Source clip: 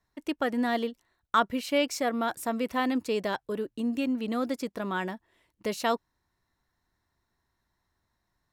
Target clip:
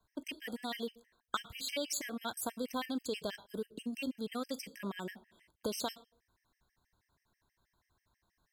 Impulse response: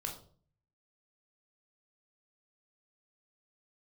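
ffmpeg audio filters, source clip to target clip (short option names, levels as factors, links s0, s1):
-filter_complex "[0:a]acrossover=split=120|3000[s0][s1][s2];[s1]acompressor=threshold=0.0141:ratio=6[s3];[s0][s3][s2]amix=inputs=3:normalize=0,asplit=2[s4][s5];[1:a]atrim=start_sample=2205,highshelf=f=4900:g=8.5[s6];[s5][s6]afir=irnorm=-1:irlink=0,volume=0.237[s7];[s4][s7]amix=inputs=2:normalize=0,afftfilt=real='re*gt(sin(2*PI*6.2*pts/sr)*(1-2*mod(floor(b*sr/1024/1600),2)),0)':imag='im*gt(sin(2*PI*6.2*pts/sr)*(1-2*mod(floor(b*sr/1024/1600),2)),0)':win_size=1024:overlap=0.75,volume=1.12"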